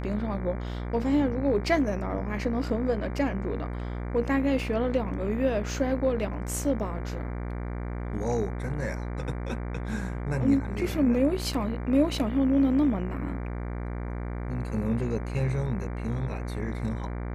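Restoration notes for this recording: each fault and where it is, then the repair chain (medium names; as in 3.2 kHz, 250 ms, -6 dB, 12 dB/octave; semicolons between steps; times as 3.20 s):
buzz 60 Hz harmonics 39 -33 dBFS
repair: de-hum 60 Hz, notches 39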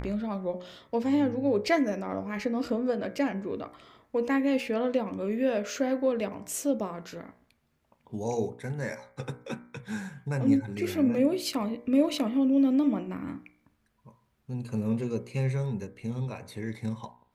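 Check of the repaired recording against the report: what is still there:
nothing left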